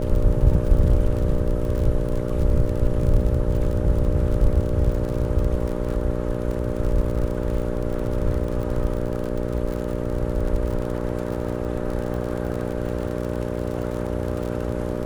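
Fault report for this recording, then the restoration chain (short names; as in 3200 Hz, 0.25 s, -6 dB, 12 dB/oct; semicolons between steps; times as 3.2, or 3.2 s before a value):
buzz 60 Hz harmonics 10 -27 dBFS
crackle 45/s -28 dBFS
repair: de-click; de-hum 60 Hz, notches 10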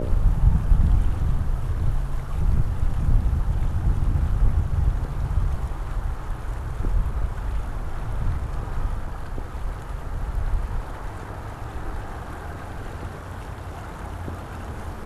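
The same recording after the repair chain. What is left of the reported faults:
none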